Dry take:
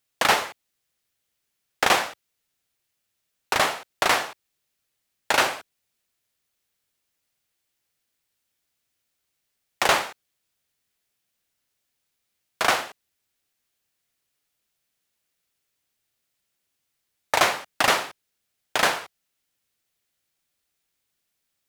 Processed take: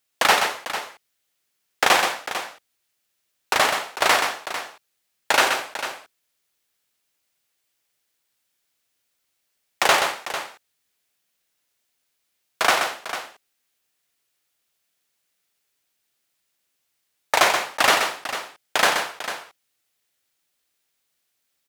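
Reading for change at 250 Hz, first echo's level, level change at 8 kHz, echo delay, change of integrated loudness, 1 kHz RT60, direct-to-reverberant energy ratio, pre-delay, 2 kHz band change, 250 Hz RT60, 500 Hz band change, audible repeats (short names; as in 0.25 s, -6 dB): +1.0 dB, -6.5 dB, +3.5 dB, 0.128 s, +1.5 dB, none, none, none, +3.5 dB, none, +2.5 dB, 2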